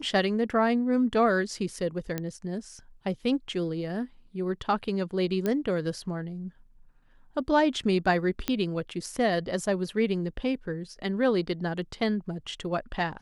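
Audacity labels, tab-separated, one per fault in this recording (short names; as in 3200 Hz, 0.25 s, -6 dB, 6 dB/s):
2.180000	2.180000	pop -16 dBFS
5.460000	5.460000	pop -15 dBFS
8.480000	8.480000	pop -12 dBFS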